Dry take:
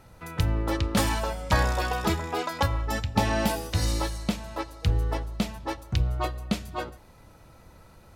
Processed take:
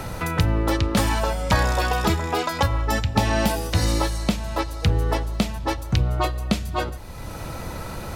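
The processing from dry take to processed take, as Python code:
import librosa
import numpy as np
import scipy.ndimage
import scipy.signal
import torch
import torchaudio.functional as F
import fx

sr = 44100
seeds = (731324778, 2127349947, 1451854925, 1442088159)

y = fx.band_squash(x, sr, depth_pct=70)
y = y * librosa.db_to_amplitude(5.0)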